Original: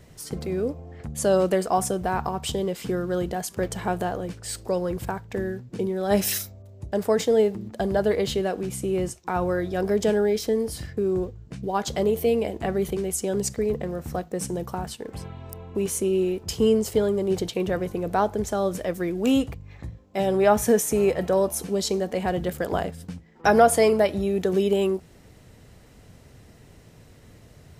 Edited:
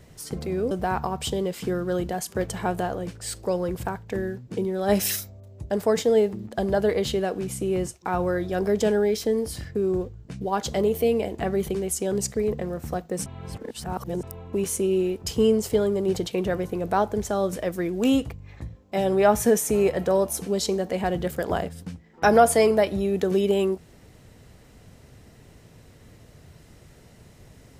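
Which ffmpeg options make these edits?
ffmpeg -i in.wav -filter_complex "[0:a]asplit=4[link_01][link_02][link_03][link_04];[link_01]atrim=end=0.712[link_05];[link_02]atrim=start=1.928:end=14.482[link_06];[link_03]atrim=start=14.478:end=15.452,asetpts=PTS-STARTPTS,areverse[link_07];[link_04]atrim=start=15.448[link_08];[link_05][link_06]acrossfade=duration=0.004:curve1=hsin:curve2=hsin[link_09];[link_09][link_07]acrossfade=duration=0.004:curve1=hsin:curve2=hsin[link_10];[link_10][link_08]acrossfade=duration=0.004:curve1=hsin:curve2=hsin" out.wav

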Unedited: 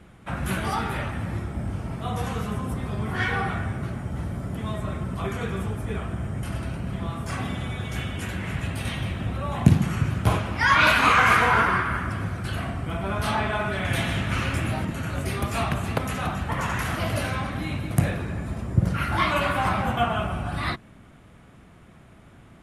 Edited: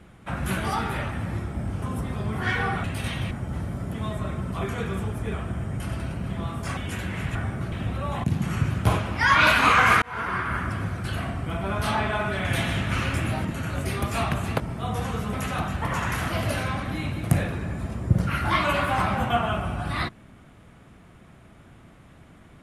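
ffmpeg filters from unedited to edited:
ffmpeg -i in.wav -filter_complex "[0:a]asplit=11[link_01][link_02][link_03][link_04][link_05][link_06][link_07][link_08][link_09][link_10][link_11];[link_01]atrim=end=1.822[link_12];[link_02]atrim=start=2.548:end=3.572[link_13];[link_03]atrim=start=8.648:end=9.122[link_14];[link_04]atrim=start=3.938:end=7.402[link_15];[link_05]atrim=start=8.068:end=8.652[link_16];[link_06]atrim=start=3.568:end=3.942[link_17];[link_07]atrim=start=9.118:end=9.64,asetpts=PTS-STARTPTS,afade=type=out:start_time=0.518:duration=0.004:curve=hsin:silence=0.223872[link_18];[link_08]atrim=start=9.64:end=11.42,asetpts=PTS-STARTPTS,afade=type=in:duration=0.29:silence=0.223872,afade=type=out:start_time=1.776:duration=0.004:curve=hsin[link_19];[link_09]atrim=start=11.42:end=16.002,asetpts=PTS-STARTPTS,afade=type=in:duration=0.57[link_20];[link_10]atrim=start=1.818:end=2.552[link_21];[link_11]atrim=start=15.998[link_22];[link_12][link_13]acrossfade=duration=0.004:curve1=hsin:curve2=hsin[link_23];[link_23][link_14]acrossfade=duration=0.004:curve1=hsin:curve2=hsin[link_24];[link_24][link_15]acrossfade=duration=0.004:curve1=hsin:curve2=hsin[link_25];[link_25][link_16]acrossfade=duration=0.004:curve1=hsin:curve2=hsin[link_26];[link_26][link_17]acrossfade=duration=0.004:curve1=hsin:curve2=hsin[link_27];[link_18][link_19][link_20]concat=n=3:v=0:a=1[link_28];[link_27][link_28]acrossfade=duration=0.004:curve1=hsin:curve2=hsin[link_29];[link_29][link_21]acrossfade=duration=0.004:curve1=hsin:curve2=hsin[link_30];[link_30][link_22]acrossfade=duration=0.004:curve1=hsin:curve2=hsin" out.wav

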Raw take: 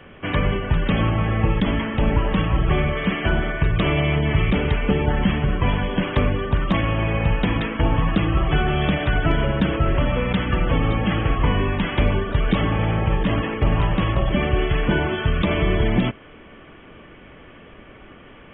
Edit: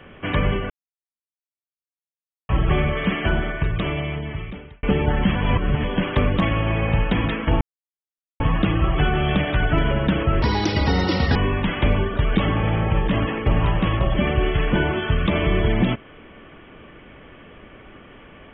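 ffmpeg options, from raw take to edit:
ffmpeg -i in.wav -filter_complex "[0:a]asplit=10[link_01][link_02][link_03][link_04][link_05][link_06][link_07][link_08][link_09][link_10];[link_01]atrim=end=0.7,asetpts=PTS-STARTPTS,afade=type=out:start_time=0.696:duration=0.004:curve=hsin[link_11];[link_02]atrim=start=0.7:end=2.49,asetpts=PTS-STARTPTS,volume=0[link_12];[link_03]atrim=start=2.49:end=4.83,asetpts=PTS-STARTPTS,afade=type=in:duration=0.004:curve=hsin,afade=type=out:start_time=0.71:duration=1.63[link_13];[link_04]atrim=start=4.83:end=5.352,asetpts=PTS-STARTPTS,afade=type=in:duration=0.004:curve=hsin[link_14];[link_05]atrim=start=5.348:end=5.842,asetpts=PTS-STARTPTS,areverse[link_15];[link_06]atrim=start=5.838:end=6.372[link_16];[link_07]atrim=start=6.688:end=7.93,asetpts=PTS-STARTPTS,afade=type=out:start_time=1.238:duration=0.004:curve=hsin,apad=pad_dur=0.79[link_17];[link_08]atrim=start=7.93:end=9.954,asetpts=PTS-STARTPTS,afade=type=in:duration=0.004:curve=hsin[link_18];[link_09]atrim=start=9.95:end=11.51,asetpts=PTS-STARTPTS,asetrate=73647,aresample=44100,atrim=end_sample=41195,asetpts=PTS-STARTPTS[link_19];[link_10]atrim=start=11.506[link_20];[link_11][link_12][link_13][link_14]concat=n=4:v=0:a=1[link_21];[link_21][link_15]acrossfade=duration=0.004:curve1=hsin:curve2=hsin[link_22];[link_22][link_16]acrossfade=duration=0.004:curve1=hsin:curve2=hsin[link_23];[link_17][link_18]concat=n=2:v=0:a=1[link_24];[link_23][link_24]acrossfade=duration=0.004:curve1=hsin:curve2=hsin[link_25];[link_25][link_19]acrossfade=duration=0.004:curve1=hsin:curve2=hsin[link_26];[link_26][link_20]acrossfade=duration=0.004:curve1=hsin:curve2=hsin" out.wav

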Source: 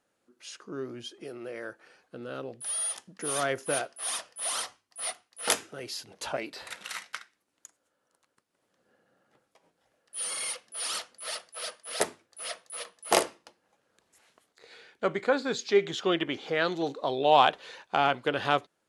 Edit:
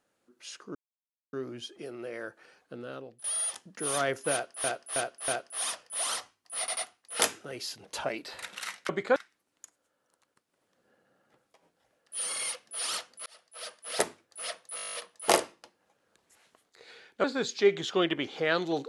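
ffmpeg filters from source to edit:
ffmpeg -i in.wav -filter_complex "[0:a]asplit=21[link_01][link_02][link_03][link_04][link_05][link_06][link_07][link_08][link_09][link_10][link_11][link_12][link_13][link_14][link_15][link_16][link_17][link_18][link_19][link_20][link_21];[link_01]atrim=end=0.75,asetpts=PTS-STARTPTS,afade=type=out:start_time=0.746:duration=0.004:curve=hsin,apad=pad_dur=0.58[link_22];[link_02]atrim=start=0.75:end=2.66,asetpts=PTS-STARTPTS,afade=type=in:duration=0.004:curve=hsin,afade=type=out:start_time=1.41:duration=0.5:silence=0.188365[link_23];[link_03]atrim=start=2.66:end=4.062,asetpts=PTS-STARTPTS,afade=type=in:duration=0.004:curve=hsin:silence=0.188365[link_24];[link_04]atrim=start=3.738:end=4.062[link_25];[link_05]atrim=start=3.738:end=4.062[link_26];[link_06]atrim=start=3.738:end=5.142[link_27];[link_07]atrim=start=5.048:end=5.142[link_28];[link_08]atrim=start=5.048:end=7.172[link_29];[link_09]atrim=start=15.068:end=15.342[link_30];[link_10]atrim=start=7.168:end=11.27,asetpts=PTS-STARTPTS,afade=type=out:start_time=4.098:duration=0.004:curve=hsin[link_31];[link_11]atrim=start=11.27:end=12.792,asetpts=PTS-STARTPTS,afade=type=in:duration=0.64[link_32];[link_12]atrim=start=12.768:end=12.792[link_33];[link_13]atrim=start=12.768:end=12.792[link_34];[link_14]atrim=start=12.768:end=12.792[link_35];[link_15]atrim=start=12.768:end=12.792[link_36];[link_16]atrim=start=12.768:end=12.792[link_37];[link_17]atrim=start=12.768:end=12.792[link_38];[link_18]atrim=start=12.768:end=12.792[link_39];[link_19]atrim=start=12.768:end=12.792[link_40];[link_20]atrim=start=12.768:end=15.072[link_41];[link_21]atrim=start=15.338[link_42];[link_22][link_23][link_24]concat=n=3:v=0:a=1[link_43];[link_43][link_25]acrossfade=duration=0.004:curve1=hsin:curve2=hsin[link_44];[link_44][link_26]acrossfade=duration=0.004:curve1=hsin:curve2=hsin[link_45];[link_45][link_27]acrossfade=duration=0.004:curve1=hsin:curve2=hsin[link_46];[link_46][link_28]acrossfade=duration=0.004:curve1=hsin:curve2=hsin[link_47];[link_47][link_29]acrossfade=duration=0.004:curve1=hsin:curve2=hsin[link_48];[link_48][link_30]acrossfade=duration=0.004:curve1=hsin:curve2=hsin[link_49];[link_31][link_32]concat=n=2:v=0:a=1[link_50];[link_49][link_50]acrossfade=duration=0.004:curve1=hsin:curve2=hsin[link_51];[link_51][link_33]acrossfade=duration=0.004:curve1=hsin:curve2=hsin[link_52];[link_52][link_34]acrossfade=duration=0.004:curve1=hsin:curve2=hsin[link_53];[link_53][link_35]acrossfade=duration=0.004:curve1=hsin:curve2=hsin[link_54];[link_54][link_36]acrossfade=duration=0.004:curve1=hsin:curve2=hsin[link_55];[link_55][link_37]acrossfade=duration=0.004:curve1=hsin:curve2=hsin[link_56];[link_56][link_38]acrossfade=duration=0.004:curve1=hsin:curve2=hsin[link_57];[link_57][link_39]acrossfade=duration=0.004:curve1=hsin:curve2=hsin[link_58];[link_58][link_40]acrossfade=duration=0.004:curve1=hsin:curve2=hsin[link_59];[link_59][link_41]acrossfade=duration=0.004:curve1=hsin:curve2=hsin[link_60];[link_60][link_42]acrossfade=duration=0.004:curve1=hsin:curve2=hsin" out.wav

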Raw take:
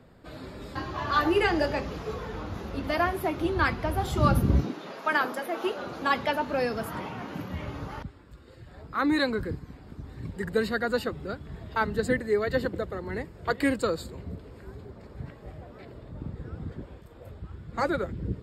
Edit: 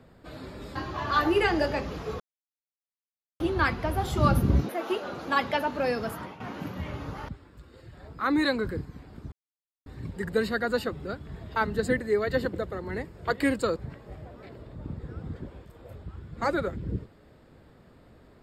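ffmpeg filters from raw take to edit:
ffmpeg -i in.wav -filter_complex "[0:a]asplit=7[link_01][link_02][link_03][link_04][link_05][link_06][link_07];[link_01]atrim=end=2.2,asetpts=PTS-STARTPTS,afade=type=out:start_time=2.196:duration=0.004:curve=hsin[link_08];[link_02]atrim=start=2.2:end=3.4,asetpts=PTS-STARTPTS,volume=0[link_09];[link_03]atrim=start=3.4:end=4.692,asetpts=PTS-STARTPTS,afade=type=in:duration=0.004:curve=hsin[link_10];[link_04]atrim=start=5.428:end=7.14,asetpts=PTS-STARTPTS,afade=type=out:start_time=1.402:duration=0.31:silence=0.237137[link_11];[link_05]atrim=start=7.14:end=10.06,asetpts=PTS-STARTPTS,afade=type=in:duration=0.004:curve=hsin:silence=0.237137,afade=type=out:start_time=2.916:duration=0.004:curve=hsin,apad=pad_dur=0.54[link_12];[link_06]atrim=start=10.06:end=13.962,asetpts=PTS-STARTPTS,afade=type=in:duration=0.004:curve=hsin[link_13];[link_07]atrim=start=15.118[link_14];[link_08][link_09][link_10]concat=n=3:v=0:a=1[link_15];[link_11][link_12][link_13]concat=n=3:v=0:a=1[link_16];[link_15][link_16]acrossfade=duration=0.004:curve1=hsin:curve2=hsin[link_17];[link_17][link_14]acrossfade=duration=0.004:curve1=hsin:curve2=hsin" out.wav

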